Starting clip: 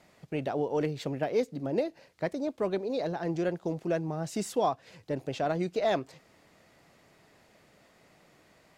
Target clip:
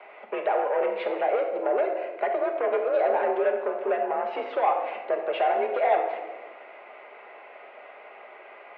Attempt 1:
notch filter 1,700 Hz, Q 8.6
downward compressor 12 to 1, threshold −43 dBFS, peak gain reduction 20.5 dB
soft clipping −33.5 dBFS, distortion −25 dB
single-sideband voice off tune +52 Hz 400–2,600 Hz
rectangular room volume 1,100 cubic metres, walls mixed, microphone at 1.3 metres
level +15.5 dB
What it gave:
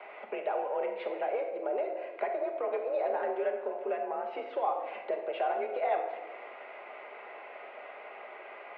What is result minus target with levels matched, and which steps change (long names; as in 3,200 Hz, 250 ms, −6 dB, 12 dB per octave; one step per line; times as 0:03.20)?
downward compressor: peak gain reduction +10 dB
change: downward compressor 12 to 1, threshold −32 dBFS, peak gain reduction 10.5 dB